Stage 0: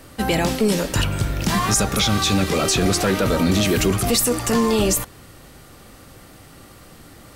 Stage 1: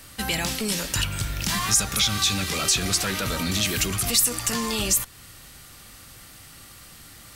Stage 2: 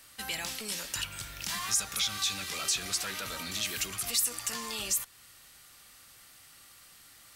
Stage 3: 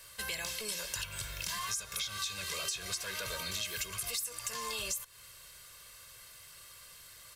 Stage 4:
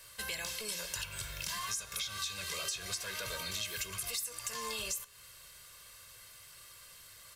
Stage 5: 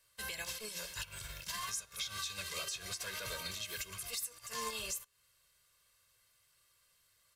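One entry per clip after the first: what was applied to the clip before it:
amplifier tone stack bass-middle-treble 5-5-5; in parallel at -2 dB: compression, threshold -38 dBFS, peak gain reduction 15.5 dB; on the sum: trim +5 dB
bass shelf 420 Hz -12 dB; trim -8 dB
comb 1.9 ms, depth 78%; compression 6:1, threshold -34 dBFS, peak gain reduction 12.5 dB
flange 0.3 Hz, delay 8.2 ms, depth 6.5 ms, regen +86%; trim +3.5 dB
peak limiter -31 dBFS, peak gain reduction 9.5 dB; upward expansion 2.5:1, over -53 dBFS; trim +3.5 dB

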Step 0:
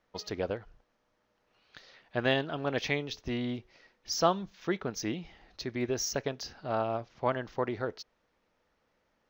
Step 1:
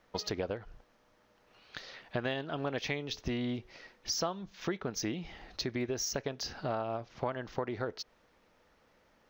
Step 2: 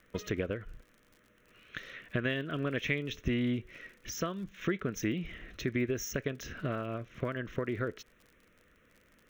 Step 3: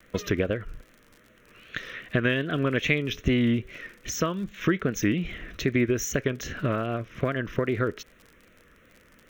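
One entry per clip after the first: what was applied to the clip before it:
compression 5:1, threshold -40 dBFS, peak gain reduction 18.5 dB; trim +7.5 dB
static phaser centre 2 kHz, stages 4; crackle 66 per s -53 dBFS; trim +5 dB
vibrato 2.5 Hz 78 cents; trim +8 dB

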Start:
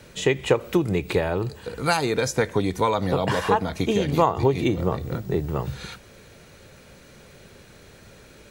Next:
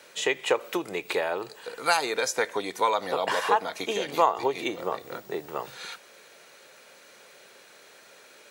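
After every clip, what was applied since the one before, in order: high-pass 560 Hz 12 dB/octave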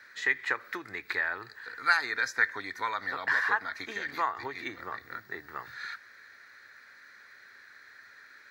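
FFT filter 110 Hz 0 dB, 160 Hz -15 dB, 260 Hz -8 dB, 520 Hz -20 dB, 940 Hz -11 dB, 1.8 kHz +8 dB, 2.9 kHz -18 dB, 4.2 kHz -5 dB, 9.2 kHz -22 dB, 15 kHz -12 dB; trim +1 dB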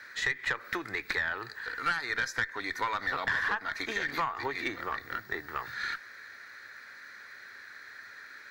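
compression 6:1, threshold -31 dBFS, peak gain reduction 12.5 dB; valve stage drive 25 dB, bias 0.4; trim +6.5 dB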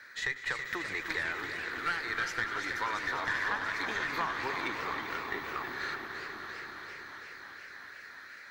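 echo with a slow build-up 98 ms, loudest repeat 5, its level -13.5 dB; modulated delay 332 ms, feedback 63%, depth 198 cents, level -8 dB; trim -3.5 dB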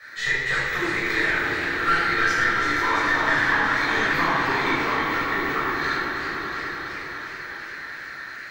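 simulated room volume 880 m³, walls mixed, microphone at 6.1 m

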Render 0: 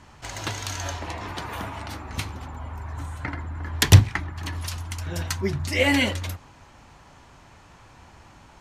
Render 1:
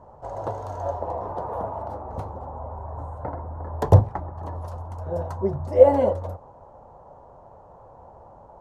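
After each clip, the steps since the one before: FFT filter 210 Hz 0 dB, 300 Hz -3 dB, 520 Hz +15 dB, 930 Hz +7 dB, 2.3 kHz -26 dB, 8.4 kHz -21 dB; trim -2 dB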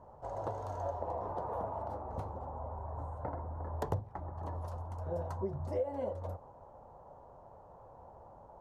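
compression 8:1, threshold -25 dBFS, peak gain reduction 18.5 dB; trim -7 dB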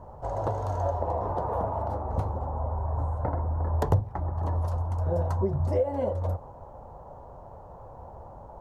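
bass shelf 120 Hz +8.5 dB; trim +8 dB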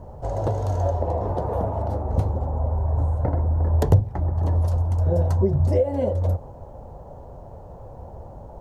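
peaking EQ 1.1 kHz -10.5 dB 1.3 oct; trim +7.5 dB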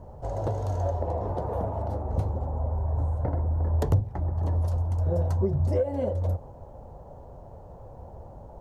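saturation -8 dBFS, distortion -24 dB; trim -4.5 dB

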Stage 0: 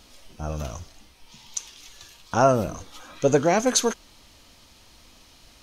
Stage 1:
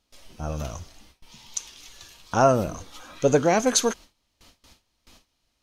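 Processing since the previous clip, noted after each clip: gate with hold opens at -40 dBFS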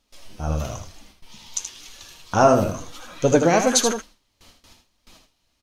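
flange 1 Hz, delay 3.2 ms, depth 9.4 ms, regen +46%; delay 78 ms -7.5 dB; trim +7 dB

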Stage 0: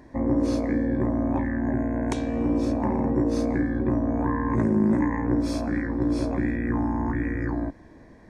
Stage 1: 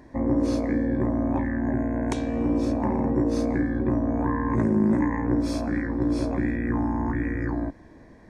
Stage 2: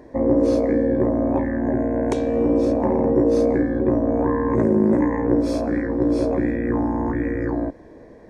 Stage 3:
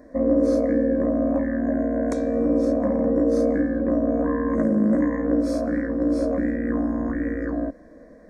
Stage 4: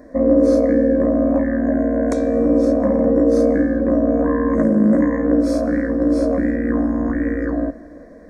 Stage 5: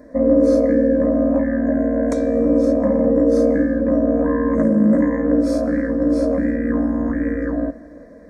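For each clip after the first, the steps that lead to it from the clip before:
no audible change
peaking EQ 480 Hz +12.5 dB 1 oct
static phaser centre 580 Hz, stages 8
plate-style reverb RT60 2.2 s, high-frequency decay 0.75×, DRR 16 dB; trim +5 dB
comb of notches 370 Hz

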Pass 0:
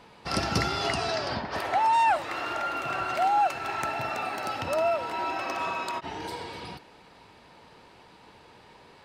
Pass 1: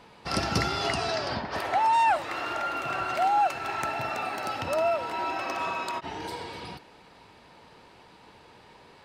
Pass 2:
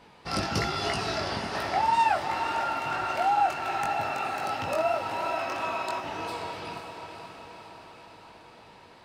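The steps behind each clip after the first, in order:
no audible change
chorus 3 Hz, delay 18.5 ms, depth 3.8 ms; echo that smears into a reverb 512 ms, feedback 59%, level -7.5 dB; trim +1.5 dB

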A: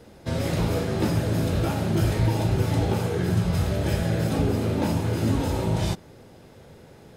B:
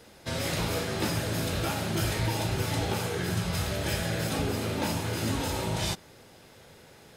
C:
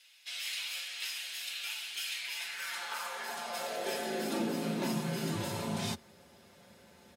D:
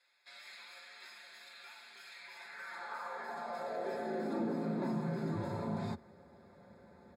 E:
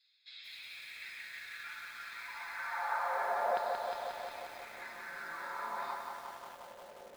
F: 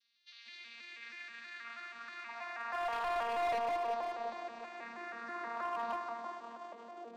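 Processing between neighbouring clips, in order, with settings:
tilt shelf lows -6 dB, about 870 Hz; trim -2 dB
comb 6.1 ms, depth 55%; frequency shift +53 Hz; high-pass sweep 2.7 kHz -> 83 Hz, 2.20–5.51 s; trim -7.5 dB
in parallel at +2 dB: peak limiter -32 dBFS, peak gain reduction 9.5 dB; on the sum: boxcar filter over 15 samples; trim -5.5 dB
LFO high-pass saw down 0.28 Hz 510–4100 Hz; distance through air 170 m; bit-crushed delay 179 ms, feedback 80%, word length 10-bit, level -4 dB; trim +4 dB
vocoder on a broken chord bare fifth, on A#3, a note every 160 ms; hard clipper -36 dBFS, distortion -9 dB; reverberation RT60 1.8 s, pre-delay 125 ms, DRR 12.5 dB; trim +3 dB

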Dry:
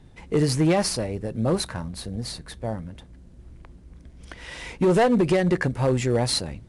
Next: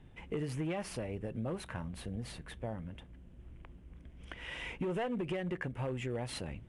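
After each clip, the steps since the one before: resonant high shelf 3.6 kHz -6 dB, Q 3; compression 4:1, threshold -29 dBFS, peak gain reduction 11 dB; trim -6.5 dB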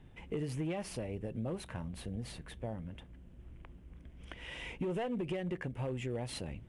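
dynamic bell 1.4 kHz, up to -5 dB, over -56 dBFS, Q 1.1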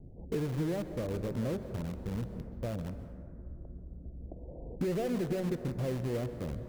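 steep low-pass 690 Hz 48 dB/octave; in parallel at -10 dB: integer overflow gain 37 dB; on the sum: plate-style reverb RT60 2.5 s, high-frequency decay 0.3×, pre-delay 115 ms, DRR 10 dB; trim +4 dB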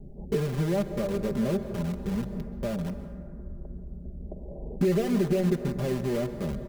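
comb 5 ms, depth 78%; trim +4.5 dB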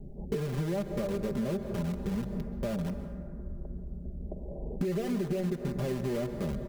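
compression, threshold -28 dBFS, peak gain reduction 8.5 dB

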